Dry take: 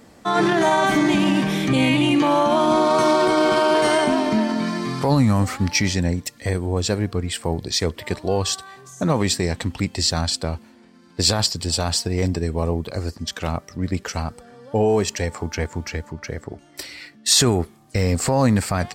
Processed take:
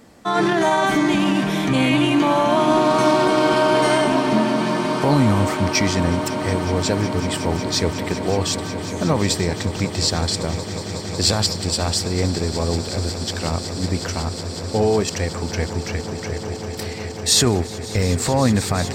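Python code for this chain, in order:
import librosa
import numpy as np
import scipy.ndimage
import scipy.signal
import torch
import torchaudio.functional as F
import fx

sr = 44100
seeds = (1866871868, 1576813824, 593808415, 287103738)

y = fx.echo_swell(x, sr, ms=184, loudest=8, wet_db=-17.0)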